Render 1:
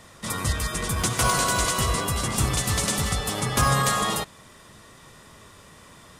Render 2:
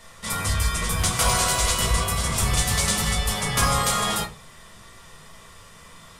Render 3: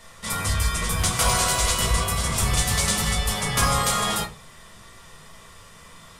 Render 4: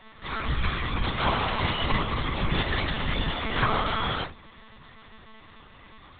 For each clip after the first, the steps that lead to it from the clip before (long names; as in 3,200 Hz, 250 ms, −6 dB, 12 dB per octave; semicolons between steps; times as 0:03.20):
parametric band 260 Hz −9.5 dB 2 octaves; rectangular room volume 130 cubic metres, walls furnished, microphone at 1.6 metres
no processing that can be heard
one-pitch LPC vocoder at 8 kHz 220 Hz; level −2.5 dB